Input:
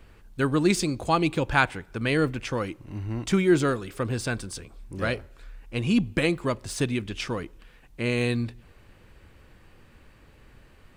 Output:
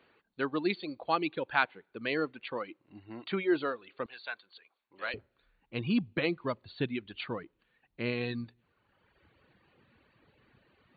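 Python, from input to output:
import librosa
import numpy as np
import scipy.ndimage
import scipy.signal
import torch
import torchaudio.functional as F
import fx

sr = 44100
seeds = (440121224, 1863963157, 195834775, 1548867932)

y = fx.highpass(x, sr, hz=fx.steps((0.0, 290.0), (4.06, 780.0), (5.14, 120.0)), slope=12)
y = fx.dereverb_blind(y, sr, rt60_s=1.3)
y = fx.brickwall_lowpass(y, sr, high_hz=4600.0)
y = F.gain(torch.from_numpy(y), -5.5).numpy()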